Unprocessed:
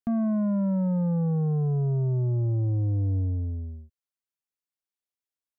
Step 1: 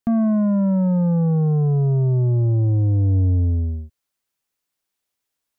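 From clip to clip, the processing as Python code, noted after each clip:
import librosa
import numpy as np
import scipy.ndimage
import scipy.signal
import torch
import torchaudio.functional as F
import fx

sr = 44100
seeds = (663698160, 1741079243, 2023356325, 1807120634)

y = fx.rider(x, sr, range_db=10, speed_s=0.5)
y = y * librosa.db_to_amplitude(7.5)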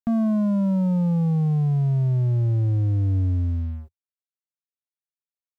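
y = fx.peak_eq(x, sr, hz=420.0, db=-10.5, octaves=0.48)
y = np.sign(y) * np.maximum(np.abs(y) - 10.0 ** (-44.5 / 20.0), 0.0)
y = fx.peak_eq(y, sr, hz=88.0, db=-2.5, octaves=0.45)
y = y * librosa.db_to_amplitude(-2.0)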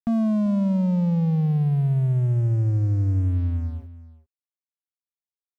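y = np.sign(x) * np.maximum(np.abs(x) - 10.0 ** (-49.5 / 20.0), 0.0)
y = y + 10.0 ** (-16.5 / 20.0) * np.pad(y, (int(390 * sr / 1000.0), 0))[:len(y)]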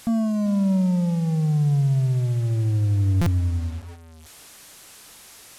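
y = fx.delta_mod(x, sr, bps=64000, step_db=-39.0)
y = fx.doubler(y, sr, ms=21.0, db=-13.5)
y = fx.buffer_glitch(y, sr, at_s=(3.21,), block=256, repeats=8)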